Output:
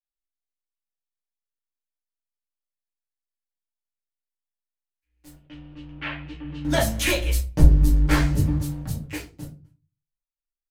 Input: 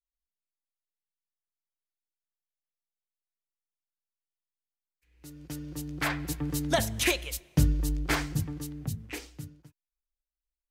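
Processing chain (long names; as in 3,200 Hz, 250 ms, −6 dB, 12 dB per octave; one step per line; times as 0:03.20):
0:07.21–0:08.55: low-shelf EQ 160 Hz +10.5 dB
leveller curve on the samples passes 3
0:05.36–0:06.65: transistor ladder low-pass 3,200 Hz, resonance 65%
rectangular room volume 130 cubic metres, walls furnished, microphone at 2.3 metres
level −11.5 dB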